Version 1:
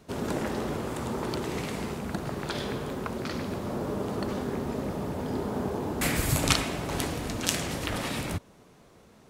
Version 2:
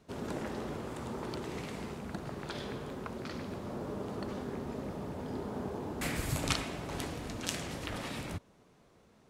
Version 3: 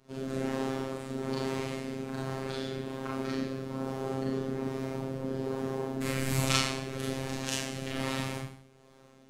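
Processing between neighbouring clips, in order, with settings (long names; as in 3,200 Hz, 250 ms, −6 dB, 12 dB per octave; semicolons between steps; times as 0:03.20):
high-shelf EQ 11,000 Hz −8 dB; level −7.5 dB
rotating-speaker cabinet horn 1.2 Hz; four-comb reverb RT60 0.59 s, combs from 29 ms, DRR −5.5 dB; phases set to zero 133 Hz; level +2.5 dB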